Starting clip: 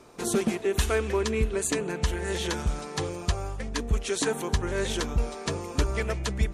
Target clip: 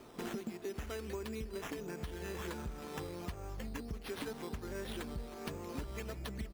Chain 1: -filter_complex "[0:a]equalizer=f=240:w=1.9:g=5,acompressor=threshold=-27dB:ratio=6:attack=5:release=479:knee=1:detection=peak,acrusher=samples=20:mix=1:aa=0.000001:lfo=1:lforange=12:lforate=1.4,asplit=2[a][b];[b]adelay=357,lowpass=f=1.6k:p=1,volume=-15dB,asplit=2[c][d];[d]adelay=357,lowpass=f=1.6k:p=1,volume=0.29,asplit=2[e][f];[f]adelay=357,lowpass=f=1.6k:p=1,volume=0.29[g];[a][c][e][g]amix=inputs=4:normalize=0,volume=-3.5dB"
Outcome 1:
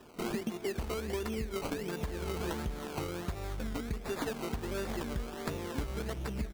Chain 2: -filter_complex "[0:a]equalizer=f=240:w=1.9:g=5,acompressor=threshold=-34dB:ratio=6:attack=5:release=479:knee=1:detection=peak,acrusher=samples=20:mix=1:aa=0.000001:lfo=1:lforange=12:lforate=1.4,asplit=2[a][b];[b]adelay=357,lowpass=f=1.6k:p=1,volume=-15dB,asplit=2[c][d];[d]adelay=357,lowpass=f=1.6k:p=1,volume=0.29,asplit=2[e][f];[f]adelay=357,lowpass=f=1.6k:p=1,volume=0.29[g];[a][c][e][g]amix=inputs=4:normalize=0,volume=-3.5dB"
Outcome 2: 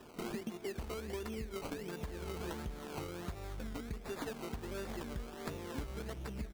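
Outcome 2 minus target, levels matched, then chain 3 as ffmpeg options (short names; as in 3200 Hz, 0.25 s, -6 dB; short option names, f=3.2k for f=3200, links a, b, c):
decimation with a swept rate: distortion +4 dB
-filter_complex "[0:a]equalizer=f=240:w=1.9:g=5,acompressor=threshold=-34dB:ratio=6:attack=5:release=479:knee=1:detection=peak,acrusher=samples=8:mix=1:aa=0.000001:lfo=1:lforange=4.8:lforate=1.4,asplit=2[a][b];[b]adelay=357,lowpass=f=1.6k:p=1,volume=-15dB,asplit=2[c][d];[d]adelay=357,lowpass=f=1.6k:p=1,volume=0.29,asplit=2[e][f];[f]adelay=357,lowpass=f=1.6k:p=1,volume=0.29[g];[a][c][e][g]amix=inputs=4:normalize=0,volume=-3.5dB"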